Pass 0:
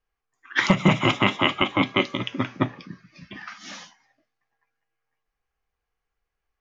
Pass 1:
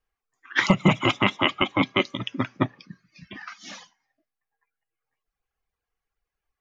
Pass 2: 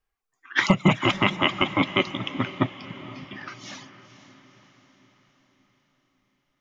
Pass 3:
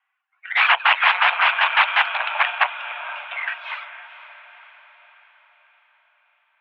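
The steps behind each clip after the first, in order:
reverb reduction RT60 1.3 s
notch filter 500 Hz, Q 16; feedback delay with all-pass diffusion 487 ms, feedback 53%, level −14.5 dB
harmonic generator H 8 −10 dB, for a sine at −3 dBFS; sine wavefolder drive 13 dB, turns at −2.5 dBFS; single-sideband voice off tune +330 Hz 460–2,600 Hz; level −4 dB

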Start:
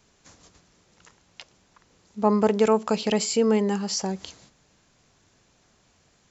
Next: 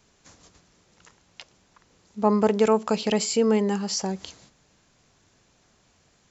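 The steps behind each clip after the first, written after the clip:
no processing that can be heard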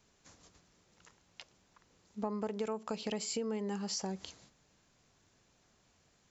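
downward compressor 6 to 1, threshold −26 dBFS, peak gain reduction 11.5 dB
level −7.5 dB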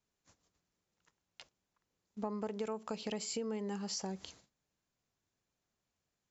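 noise gate −57 dBFS, range −15 dB
level −2 dB

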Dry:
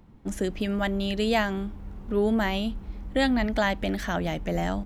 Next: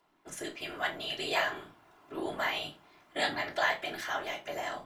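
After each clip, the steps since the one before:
high-pass filter 780 Hz 12 dB per octave
random phases in short frames
convolution reverb RT60 0.25 s, pre-delay 3 ms, DRR 0.5 dB
level −4 dB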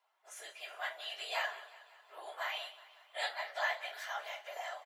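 random phases in long frames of 50 ms
Butterworth high-pass 560 Hz 36 dB per octave
repeating echo 183 ms, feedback 58%, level −17.5 dB
level −6 dB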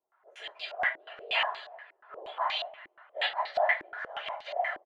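low-pass on a step sequencer 8.4 Hz 340–4,200 Hz
level +3 dB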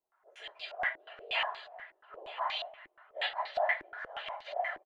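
low-shelf EQ 66 Hz +10 dB
single-tap delay 964 ms −17 dB
level −4 dB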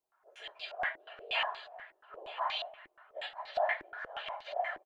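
gain on a spectral selection 0:03.20–0:03.48, 310–5,000 Hz −8 dB
notch filter 2,000 Hz, Q 16

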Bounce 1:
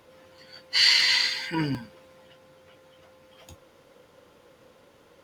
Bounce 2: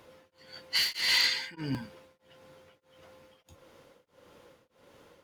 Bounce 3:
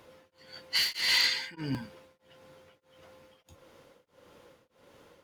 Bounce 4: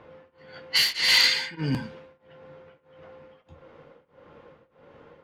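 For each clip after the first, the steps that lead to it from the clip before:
hard clipping −18.5 dBFS, distortion −11 dB; tremolo along a rectified sine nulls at 1.6 Hz
no processing that can be heard
on a send at −8 dB: convolution reverb RT60 0.40 s, pre-delay 3 ms; on the sum: low-pass that shuts in the quiet parts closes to 1,900 Hz, open at −25.5 dBFS; level +6 dB

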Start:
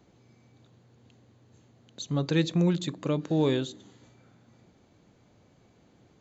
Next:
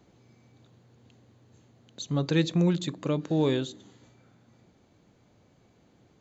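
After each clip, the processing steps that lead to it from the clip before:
speech leveller 2 s
level +1 dB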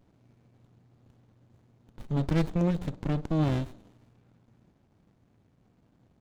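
windowed peak hold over 65 samples
level −1 dB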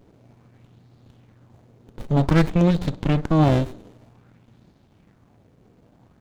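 auto-filter bell 0.53 Hz 410–4,300 Hz +7 dB
level +8.5 dB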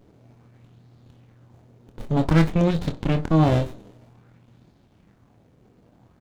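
double-tracking delay 25 ms −8 dB
level −1.5 dB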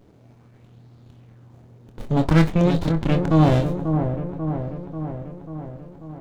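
delay with a low-pass on its return 540 ms, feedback 63%, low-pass 1,100 Hz, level −6.5 dB
level +1.5 dB

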